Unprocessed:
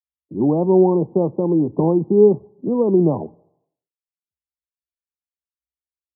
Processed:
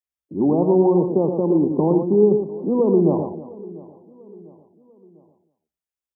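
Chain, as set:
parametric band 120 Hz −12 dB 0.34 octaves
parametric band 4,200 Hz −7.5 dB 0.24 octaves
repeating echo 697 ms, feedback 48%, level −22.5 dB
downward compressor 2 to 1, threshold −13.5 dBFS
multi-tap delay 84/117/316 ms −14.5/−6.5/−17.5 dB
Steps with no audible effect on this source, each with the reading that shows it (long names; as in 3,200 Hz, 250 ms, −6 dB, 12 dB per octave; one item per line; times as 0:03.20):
parametric band 4,200 Hz: nothing at its input above 1,000 Hz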